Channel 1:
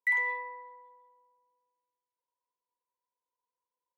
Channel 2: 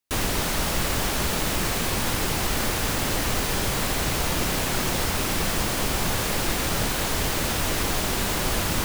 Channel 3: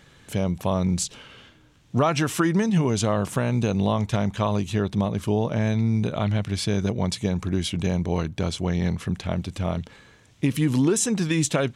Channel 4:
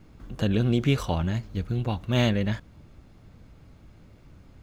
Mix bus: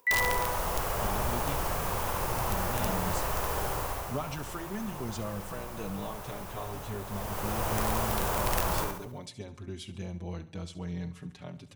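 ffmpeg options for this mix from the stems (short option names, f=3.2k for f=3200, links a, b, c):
-filter_complex "[0:a]equalizer=f=350:w=0.32:g=14,volume=-3.5dB[a];[1:a]equalizer=f=250:t=o:w=1:g=-11,equalizer=f=500:t=o:w=1:g=3,equalizer=f=1k:t=o:w=1:g=6,equalizer=f=2k:t=o:w=1:g=-5,equalizer=f=4k:t=o:w=1:g=-9,equalizer=f=8k:t=o:w=1:g=-5,volume=5.5dB,afade=t=out:st=3.65:d=0.53:silence=0.281838,afade=t=in:st=7.04:d=0.74:silence=0.237137,asplit=2[b][c];[c]volume=-3.5dB[d];[2:a]asplit=2[e][f];[f]adelay=5.2,afreqshift=-0.41[g];[e][g]amix=inputs=2:normalize=1,adelay=2150,volume=-12dB,asplit=2[h][i];[i]volume=-15.5dB[j];[3:a]adelay=600,volume=-16dB[k];[d][j]amix=inputs=2:normalize=0,aecho=0:1:69|138|207|276|345|414:1|0.46|0.212|0.0973|0.0448|0.0206[l];[a][b][h][k][l]amix=inputs=5:normalize=0,acompressor=mode=upward:threshold=-48dB:ratio=2.5,aeval=exprs='(mod(8.41*val(0)+1,2)-1)/8.41':c=same"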